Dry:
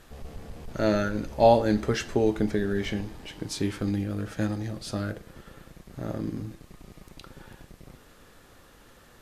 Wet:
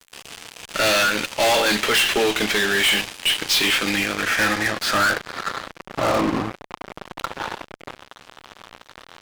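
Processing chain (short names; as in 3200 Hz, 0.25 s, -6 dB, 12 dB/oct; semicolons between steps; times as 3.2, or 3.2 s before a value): band-pass sweep 2900 Hz -> 1000 Hz, 3.67–5.98; fuzz box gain 52 dB, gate -58 dBFS; gain -2.5 dB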